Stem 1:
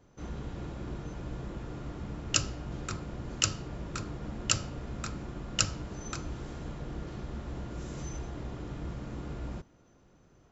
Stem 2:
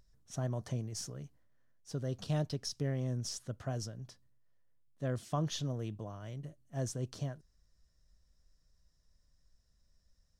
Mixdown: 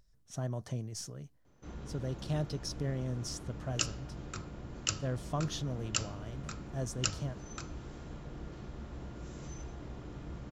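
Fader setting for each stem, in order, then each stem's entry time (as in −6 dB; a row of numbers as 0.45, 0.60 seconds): −5.5, −0.5 decibels; 1.45, 0.00 seconds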